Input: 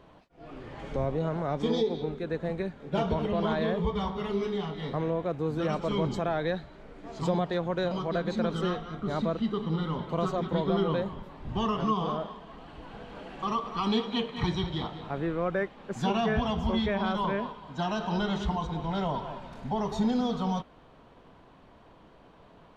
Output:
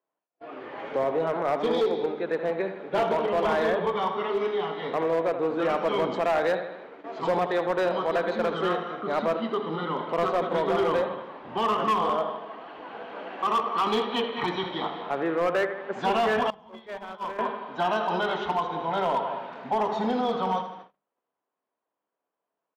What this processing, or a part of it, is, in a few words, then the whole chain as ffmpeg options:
walkie-talkie: -filter_complex "[0:a]highpass=400,lowpass=2.6k,aecho=1:1:79|158|237|316|395|474:0.316|0.177|0.0992|0.0555|0.0311|0.0174,asoftclip=type=hard:threshold=-26.5dB,agate=range=-36dB:threshold=-51dB:ratio=16:detection=peak,asettb=1/sr,asplit=3[a][b][c];[a]atrim=end=16.504[d];[b]atrim=start=16.5:end=17.39,asetpts=PTS-STARTPTS,afade=t=in:d=0.004:c=qsin,afade=t=out:st=0.886:d=0.004:c=qsin,agate=range=-23dB:threshold=-29dB:ratio=16:detection=peak[e];[c]atrim=start=17.386[f];[d][e]acrossfade=d=0.004:c1=hsin:c2=qsin[g];[g][f]acrossfade=d=0.004:c1=qsin:c2=hsin,bandreject=f=50:t=h:w=6,bandreject=f=100:t=h:w=6,bandreject=f=150:t=h:w=6,bandreject=f=200:t=h:w=6,volume=7.5dB"

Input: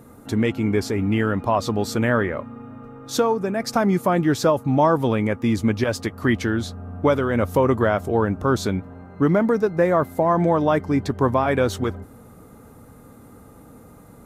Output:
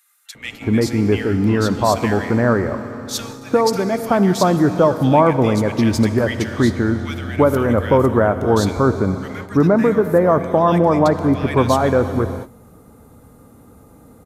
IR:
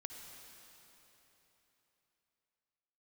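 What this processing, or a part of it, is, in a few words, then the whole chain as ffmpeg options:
keyed gated reverb: -filter_complex "[0:a]equalizer=f=71:w=5.6:g=4.5,acrossover=split=1800[a][b];[a]adelay=350[c];[c][b]amix=inputs=2:normalize=0,asplit=3[d][e][f];[1:a]atrim=start_sample=2205[g];[e][g]afir=irnorm=-1:irlink=0[h];[f]apad=whole_len=644024[i];[h][i]sidechaingate=range=-33dB:threshold=-39dB:ratio=16:detection=peak,volume=1.5dB[j];[d][j]amix=inputs=2:normalize=0"

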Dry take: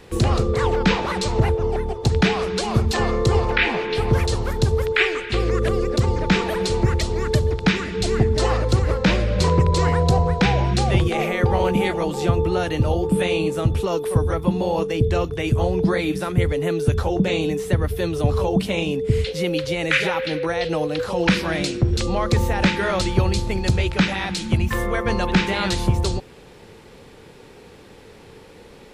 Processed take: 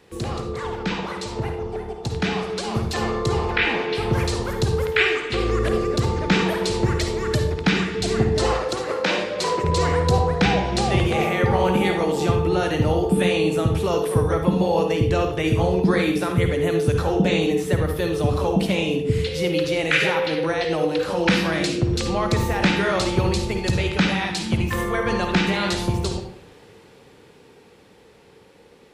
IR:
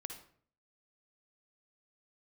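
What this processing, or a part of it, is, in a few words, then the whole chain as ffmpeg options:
far laptop microphone: -filter_complex "[0:a]asettb=1/sr,asplit=3[a][b][c];[a]atrim=end=8.514[d];[b]atrim=start=8.51:end=9.64,asetpts=PTS-STARTPTS,afade=t=in:d=0.004:c=qsin,afade=t=out:st=1.126:d=0.004:c=qsin,highpass=360[e];[c]atrim=start=9.636[f];[d][e]acrossfade=d=0.004:c1=hsin:c2=qsin[g];[g][f]acrossfade=d=0.004:c1=qsin:c2=hsin[h];[1:a]atrim=start_sample=2205[i];[h][i]afir=irnorm=-1:irlink=0,highpass=f=110:p=1,dynaudnorm=f=460:g=13:m=11.5dB,volume=-3.5dB"

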